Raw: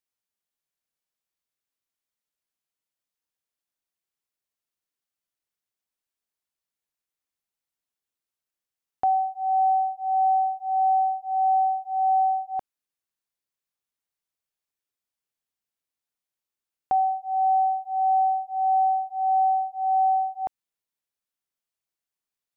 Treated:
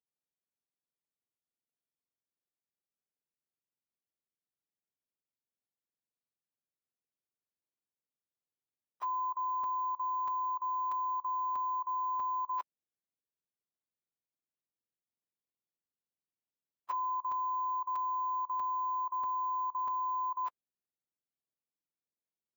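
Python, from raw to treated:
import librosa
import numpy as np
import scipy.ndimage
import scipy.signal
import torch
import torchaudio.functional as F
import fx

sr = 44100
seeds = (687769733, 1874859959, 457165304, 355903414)

y = fx.octave_mirror(x, sr, pivot_hz=880.0)
y = fx.level_steps(y, sr, step_db=19)
y = scipy.signal.sosfilt(scipy.signal.butter(2, 490.0, 'highpass', fs=sr, output='sos'), y)
y = np.repeat(scipy.signal.resample_poly(y, 1, 2), 2)[:len(y)]
y = fx.buffer_crackle(y, sr, first_s=0.67, period_s=0.64, block=256, kind='repeat')
y = y * librosa.db_to_amplitude(4.5)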